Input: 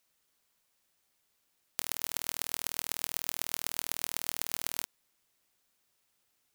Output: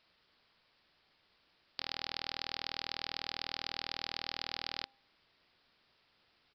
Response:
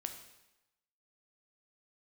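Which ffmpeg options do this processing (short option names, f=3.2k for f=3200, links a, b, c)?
-af "aresample=11025,asoftclip=type=tanh:threshold=-30dB,aresample=44100,bandreject=f=266.5:t=h:w=4,bandreject=f=533:t=h:w=4,bandreject=f=799.5:t=h:w=4,volume=9dB"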